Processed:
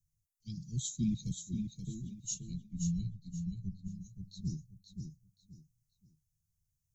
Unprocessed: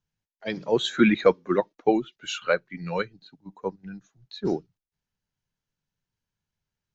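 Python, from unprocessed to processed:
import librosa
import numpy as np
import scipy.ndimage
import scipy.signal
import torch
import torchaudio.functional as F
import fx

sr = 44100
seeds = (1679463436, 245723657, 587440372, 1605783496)

y = scipy.signal.sosfilt(scipy.signal.cheby2(4, 80, [560.0, 1700.0], 'bandstop', fs=sr, output='sos'), x)
y = fx.tilt_eq(y, sr, slope=-2.0, at=(2.34, 3.88))
y = fx.echo_feedback(y, sr, ms=528, feedback_pct=26, wet_db=-6.5)
y = F.gain(torch.from_numpy(y), 6.0).numpy()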